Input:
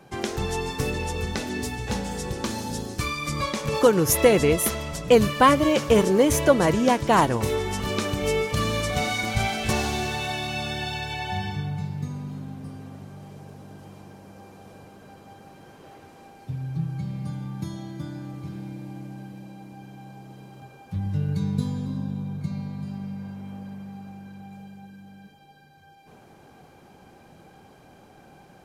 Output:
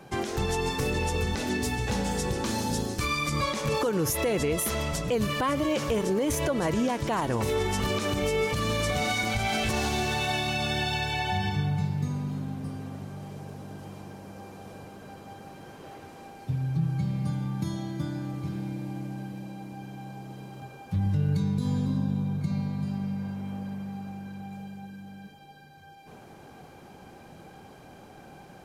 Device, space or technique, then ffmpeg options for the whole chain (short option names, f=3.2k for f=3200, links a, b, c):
stacked limiters: -af "alimiter=limit=-10.5dB:level=0:latency=1:release=323,alimiter=limit=-16dB:level=0:latency=1:release=144,alimiter=limit=-21dB:level=0:latency=1:release=46,volume=2.5dB"